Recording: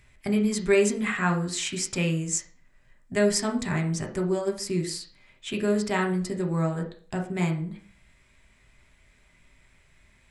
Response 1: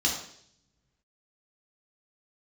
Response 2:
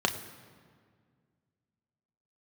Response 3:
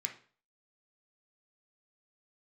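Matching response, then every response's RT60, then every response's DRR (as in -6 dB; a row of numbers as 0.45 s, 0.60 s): 3; 0.65 s, 1.9 s, 0.40 s; -2.0 dB, 4.5 dB, 2.5 dB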